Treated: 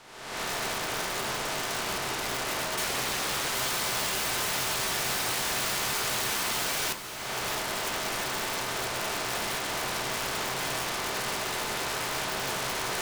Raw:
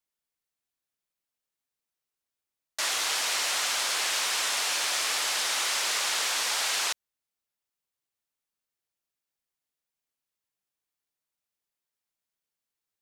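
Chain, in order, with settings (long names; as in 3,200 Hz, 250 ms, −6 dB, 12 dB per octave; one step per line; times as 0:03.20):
compressor on every frequency bin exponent 0.4
camcorder AGC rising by 54 dB per second
spectral tilt −4 dB per octave
hum removal 51.2 Hz, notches 12
wrap-around overflow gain 24.5 dB
feedback delay with all-pass diffusion 508 ms, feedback 74%, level −14 dB
convolution reverb RT60 0.50 s, pre-delay 4 ms, DRR 6 dB
0:02.84–0:03.55: highs frequency-modulated by the lows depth 1 ms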